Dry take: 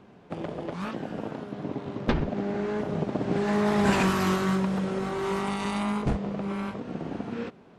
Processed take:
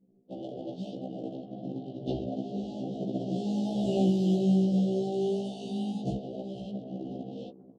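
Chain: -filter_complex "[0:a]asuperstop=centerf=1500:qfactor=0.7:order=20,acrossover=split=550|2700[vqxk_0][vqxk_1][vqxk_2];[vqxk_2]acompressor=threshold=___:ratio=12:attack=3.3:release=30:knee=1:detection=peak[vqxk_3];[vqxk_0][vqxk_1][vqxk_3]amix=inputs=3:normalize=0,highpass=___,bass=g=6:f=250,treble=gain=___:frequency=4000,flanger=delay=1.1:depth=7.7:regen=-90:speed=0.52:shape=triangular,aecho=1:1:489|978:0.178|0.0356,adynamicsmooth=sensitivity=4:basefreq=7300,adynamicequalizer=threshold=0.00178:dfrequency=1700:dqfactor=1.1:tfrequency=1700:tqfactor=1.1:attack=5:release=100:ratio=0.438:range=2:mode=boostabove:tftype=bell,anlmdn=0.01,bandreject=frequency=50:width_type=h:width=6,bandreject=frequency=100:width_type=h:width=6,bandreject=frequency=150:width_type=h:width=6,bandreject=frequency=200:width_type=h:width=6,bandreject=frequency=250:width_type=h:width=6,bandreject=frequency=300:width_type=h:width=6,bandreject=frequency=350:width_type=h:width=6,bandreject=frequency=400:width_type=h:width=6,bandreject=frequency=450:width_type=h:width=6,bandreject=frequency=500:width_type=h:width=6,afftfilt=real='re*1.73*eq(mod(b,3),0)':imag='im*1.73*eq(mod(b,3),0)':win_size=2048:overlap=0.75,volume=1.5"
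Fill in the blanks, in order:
0.00282, 190, 7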